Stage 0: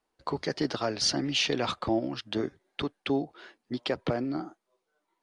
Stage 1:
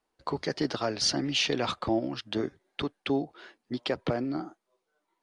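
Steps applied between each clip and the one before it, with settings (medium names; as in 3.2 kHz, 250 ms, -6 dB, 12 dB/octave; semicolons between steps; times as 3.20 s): no audible change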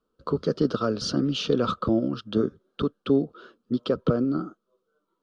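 FFT filter 130 Hz 0 dB, 210 Hz +5 dB, 330 Hz -3 dB, 480 Hz +3 dB, 820 Hz -18 dB, 1.3 kHz +3 dB, 2 kHz -25 dB, 3.1 kHz -8 dB, 9.4 kHz -16 dB; trim +6.5 dB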